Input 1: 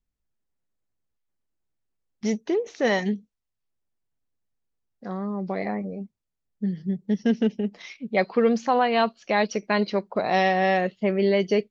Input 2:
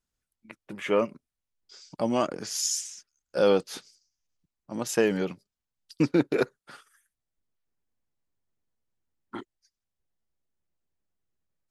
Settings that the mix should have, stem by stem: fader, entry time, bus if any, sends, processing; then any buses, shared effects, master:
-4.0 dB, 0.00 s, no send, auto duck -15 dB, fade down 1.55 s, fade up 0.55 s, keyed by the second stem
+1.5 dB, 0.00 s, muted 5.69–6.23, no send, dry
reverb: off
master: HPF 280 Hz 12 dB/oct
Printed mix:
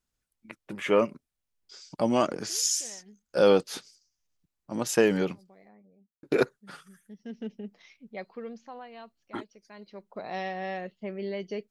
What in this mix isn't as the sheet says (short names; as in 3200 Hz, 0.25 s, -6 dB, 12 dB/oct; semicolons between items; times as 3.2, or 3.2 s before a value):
stem 1 -4.0 dB -> -13.0 dB; master: missing HPF 280 Hz 12 dB/oct